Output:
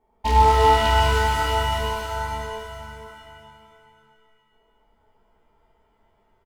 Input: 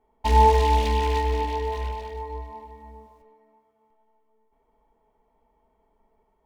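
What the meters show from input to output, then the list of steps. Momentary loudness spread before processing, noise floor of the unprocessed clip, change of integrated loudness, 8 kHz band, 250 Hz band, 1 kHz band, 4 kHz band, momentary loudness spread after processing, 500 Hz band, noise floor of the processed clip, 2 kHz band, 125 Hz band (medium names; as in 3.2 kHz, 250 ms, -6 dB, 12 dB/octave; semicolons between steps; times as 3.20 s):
18 LU, -69 dBFS, +2.5 dB, +7.5 dB, -0.5 dB, +3.5 dB, +9.0 dB, 19 LU, +1.5 dB, -65 dBFS, +10.0 dB, no reading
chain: doubling 25 ms -9 dB; delay 606 ms -12.5 dB; pitch-shifted reverb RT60 1.8 s, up +7 st, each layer -2 dB, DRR 4 dB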